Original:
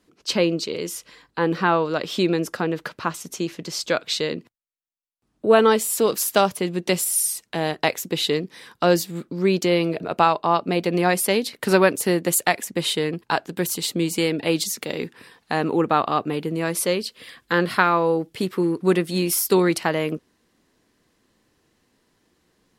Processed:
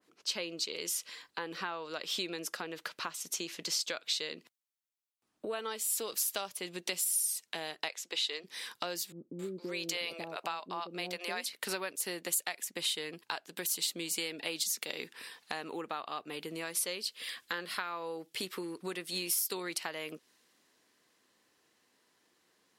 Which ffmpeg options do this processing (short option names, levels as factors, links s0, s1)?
-filter_complex "[0:a]asplit=3[s0][s1][s2];[s0]afade=t=out:st=7.88:d=0.02[s3];[s1]highpass=480,lowpass=7300,afade=t=in:st=7.88:d=0.02,afade=t=out:st=8.43:d=0.02[s4];[s2]afade=t=in:st=8.43:d=0.02[s5];[s3][s4][s5]amix=inputs=3:normalize=0,asettb=1/sr,asplit=3[s6][s7][s8];[s6]atrim=end=9.124[s9];[s7]atrim=start=9.12:end=11.46,asetpts=PTS-STARTPTS,afade=t=in:d=0.004:c=qsin,afade=t=out:st=2.336:d=0.004:c=qsin,acrossover=split=500[s10][s11];[s11]adelay=270[s12];[s10][s12]amix=inputs=2:normalize=0,atrim=end_sample=103194[s13];[s8]atrim=start=11.456[s14];[s9][s13]acrossfade=d=0.004:c1=hsin:c2=qsin[s15];[s15][s14]acrossfade=d=0.004:c1=qsin:c2=hsin,highpass=f=690:p=1,acompressor=threshold=0.0158:ratio=4,adynamicequalizer=threshold=0.00224:dfrequency=2100:dqfactor=0.7:tfrequency=2100:tqfactor=0.7:attack=5:release=100:ratio=0.375:range=3.5:mode=boostabove:tftype=highshelf,volume=0.75"